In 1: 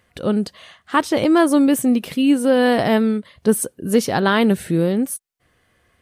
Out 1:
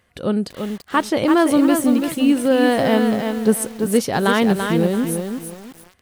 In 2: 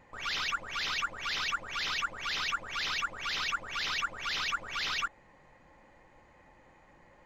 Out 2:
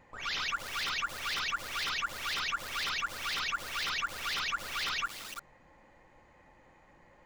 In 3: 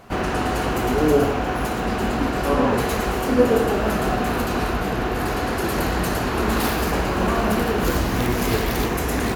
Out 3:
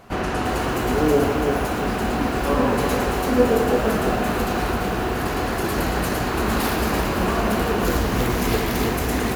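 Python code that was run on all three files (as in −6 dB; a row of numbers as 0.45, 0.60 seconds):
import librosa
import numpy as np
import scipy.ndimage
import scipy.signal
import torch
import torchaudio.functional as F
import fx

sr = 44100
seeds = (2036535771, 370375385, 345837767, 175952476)

y = fx.echo_crushed(x, sr, ms=337, feedback_pct=35, bits=6, wet_db=-5.5)
y = y * librosa.db_to_amplitude(-1.0)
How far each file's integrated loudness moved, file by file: 0.0, −0.5, 0.0 LU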